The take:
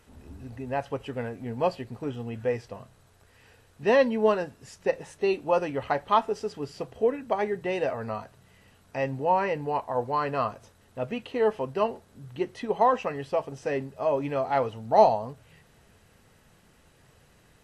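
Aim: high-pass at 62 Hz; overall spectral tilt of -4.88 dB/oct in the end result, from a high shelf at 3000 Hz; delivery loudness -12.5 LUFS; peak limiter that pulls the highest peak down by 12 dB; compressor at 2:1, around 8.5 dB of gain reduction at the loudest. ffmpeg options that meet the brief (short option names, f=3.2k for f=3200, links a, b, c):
-af "highpass=62,highshelf=f=3k:g=6,acompressor=threshold=-27dB:ratio=2,volume=23.5dB,alimiter=limit=-2dB:level=0:latency=1"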